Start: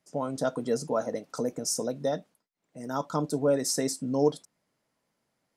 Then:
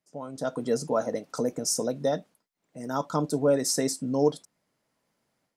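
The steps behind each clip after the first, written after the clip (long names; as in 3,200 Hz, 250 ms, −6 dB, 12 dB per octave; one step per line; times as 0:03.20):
automatic gain control gain up to 10.5 dB
level −8 dB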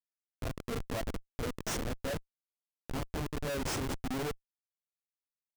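multi-voice chorus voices 4, 0.88 Hz, delay 23 ms, depth 3.9 ms
comparator with hysteresis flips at −28 dBFS
level −2.5 dB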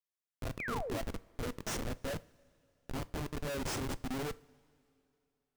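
sound drawn into the spectrogram fall, 0:00.59–0:00.98, 260–2,600 Hz −37 dBFS
coupled-rooms reverb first 0.33 s, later 2.8 s, from −18 dB, DRR 15.5 dB
level −2.5 dB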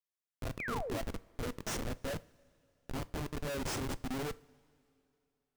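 no processing that can be heard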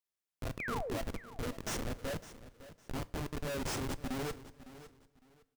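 repeating echo 557 ms, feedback 24%, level −15.5 dB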